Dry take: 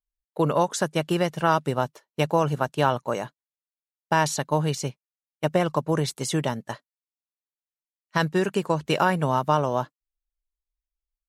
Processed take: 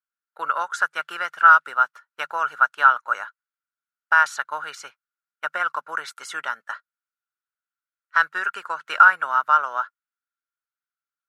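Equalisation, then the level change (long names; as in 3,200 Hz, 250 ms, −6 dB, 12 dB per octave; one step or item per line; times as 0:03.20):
high-pass with resonance 1,400 Hz, resonance Q 12
high-shelf EQ 2,500 Hz −10.5 dB
+1.0 dB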